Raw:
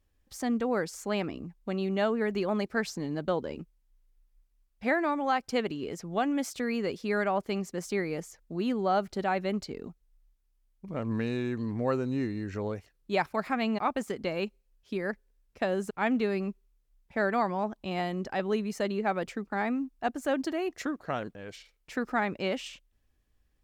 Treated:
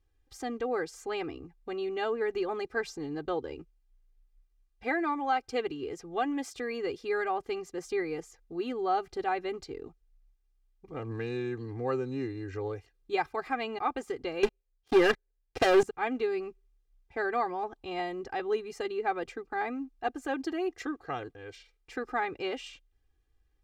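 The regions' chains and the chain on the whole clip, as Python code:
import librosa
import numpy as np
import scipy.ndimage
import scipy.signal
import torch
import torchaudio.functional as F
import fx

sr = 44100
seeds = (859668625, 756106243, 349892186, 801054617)

y = fx.chain(x, sr, fx.peak_eq(hz=610.0, db=4.5, octaves=0.27),
    fx.leveller(passes=5), at=(14.43, 15.83))
y = fx.high_shelf(y, sr, hz=9000.0, db=-11.0)
y = y + 0.89 * np.pad(y, (int(2.5 * sr / 1000.0), 0))[:len(y)]
y = F.gain(torch.from_numpy(y), -4.5).numpy()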